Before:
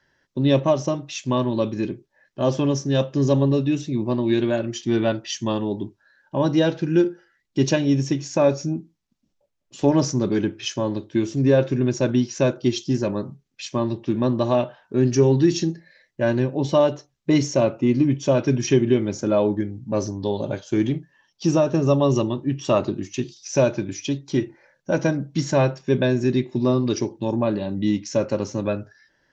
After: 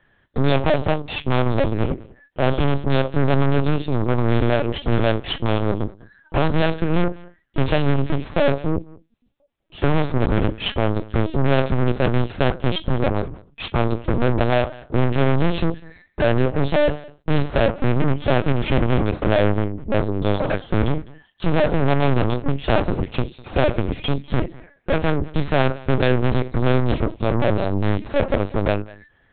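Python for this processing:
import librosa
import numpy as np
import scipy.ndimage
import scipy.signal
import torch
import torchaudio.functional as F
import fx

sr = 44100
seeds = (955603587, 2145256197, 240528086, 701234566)

p1 = 10.0 ** (-20.0 / 20.0) * np.tanh(x / 10.0 ** (-20.0 / 20.0))
p2 = fx.cheby_harmonics(p1, sr, harmonics=(4, 6), levels_db=(-8, -24), full_scale_db=-20.0)
p3 = p2 + fx.echo_single(p2, sr, ms=201, db=-22.0, dry=0)
p4 = fx.lpc_vocoder(p3, sr, seeds[0], excitation='pitch_kept', order=8)
y = p4 * librosa.db_to_amplitude(6.5)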